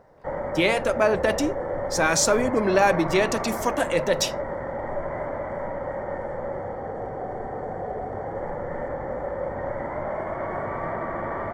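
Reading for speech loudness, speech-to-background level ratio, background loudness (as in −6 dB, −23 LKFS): −23.0 LKFS, 7.5 dB, −30.5 LKFS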